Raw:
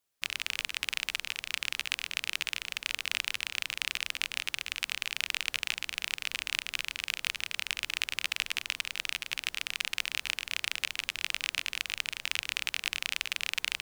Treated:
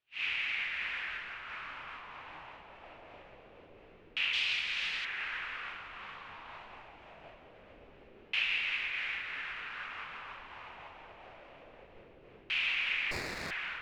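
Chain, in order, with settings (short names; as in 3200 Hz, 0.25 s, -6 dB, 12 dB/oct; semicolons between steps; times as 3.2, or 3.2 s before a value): phase scrambler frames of 0.2 s; 4.33–5.05 resonant high shelf 3000 Hz +10 dB, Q 1.5; delay with a stepping band-pass 0.562 s, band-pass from 440 Hz, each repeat 1.4 oct, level -3.5 dB; LFO low-pass saw down 0.24 Hz 400–2800 Hz; 13.11–13.51 running maximum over 9 samples; gain -3 dB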